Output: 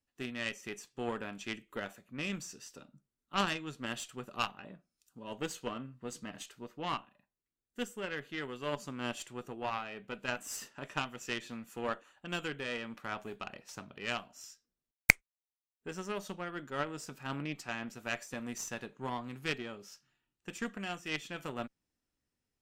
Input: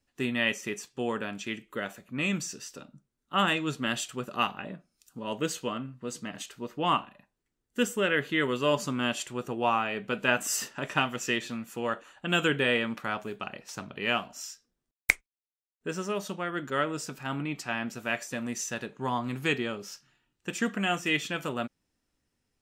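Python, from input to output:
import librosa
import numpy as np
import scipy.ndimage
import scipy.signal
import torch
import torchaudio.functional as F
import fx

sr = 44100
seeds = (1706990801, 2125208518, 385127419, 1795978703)

y = fx.rider(x, sr, range_db=4, speed_s=0.5)
y = fx.cheby_harmonics(y, sr, harmonics=(4, 7), levels_db=(-17, -20), full_scale_db=-2.5)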